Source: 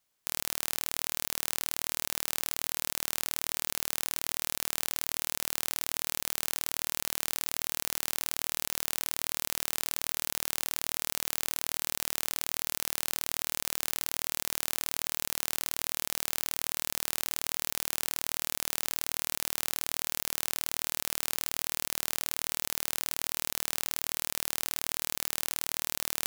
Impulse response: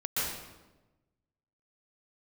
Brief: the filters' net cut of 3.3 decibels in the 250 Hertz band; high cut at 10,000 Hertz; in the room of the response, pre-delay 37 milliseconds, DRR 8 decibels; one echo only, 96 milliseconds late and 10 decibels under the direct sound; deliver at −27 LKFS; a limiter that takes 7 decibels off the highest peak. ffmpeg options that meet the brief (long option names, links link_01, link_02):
-filter_complex "[0:a]lowpass=10000,equalizer=frequency=250:width_type=o:gain=-4.5,alimiter=limit=-16dB:level=0:latency=1,aecho=1:1:96:0.316,asplit=2[link_01][link_02];[1:a]atrim=start_sample=2205,adelay=37[link_03];[link_02][link_03]afir=irnorm=-1:irlink=0,volume=-15.5dB[link_04];[link_01][link_04]amix=inputs=2:normalize=0,volume=14dB"